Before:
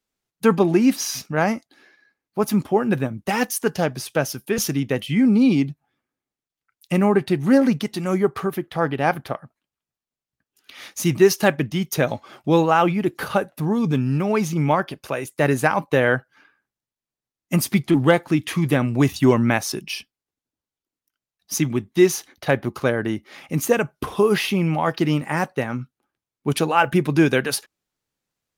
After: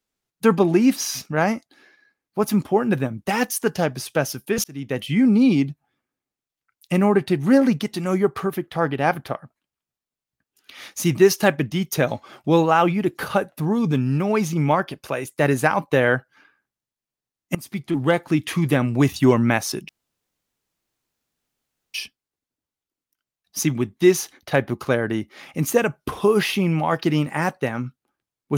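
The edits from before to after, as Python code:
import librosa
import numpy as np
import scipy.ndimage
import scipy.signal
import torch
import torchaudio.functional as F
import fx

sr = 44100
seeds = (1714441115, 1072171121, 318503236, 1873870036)

y = fx.edit(x, sr, fx.fade_in_span(start_s=4.64, length_s=0.41),
    fx.fade_in_from(start_s=17.55, length_s=0.83, floor_db=-20.0),
    fx.insert_room_tone(at_s=19.89, length_s=2.05), tone=tone)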